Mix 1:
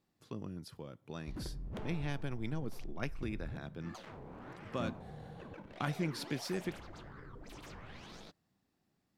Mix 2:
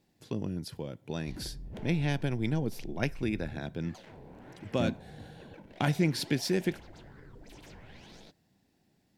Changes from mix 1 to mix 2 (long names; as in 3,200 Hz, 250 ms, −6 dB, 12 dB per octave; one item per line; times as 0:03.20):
speech +9.0 dB
master: add parametric band 1,200 Hz −12.5 dB 0.34 octaves